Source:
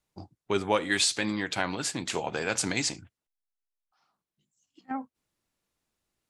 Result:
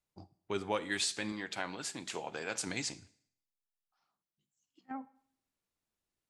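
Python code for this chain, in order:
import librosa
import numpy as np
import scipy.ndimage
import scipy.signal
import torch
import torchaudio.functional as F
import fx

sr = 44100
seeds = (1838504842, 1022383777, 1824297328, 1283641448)

y = fx.highpass(x, sr, hz=200.0, slope=6, at=(1.32, 2.67))
y = fx.rev_schroeder(y, sr, rt60_s=0.63, comb_ms=38, drr_db=18.5)
y = y * librosa.db_to_amplitude(-8.5)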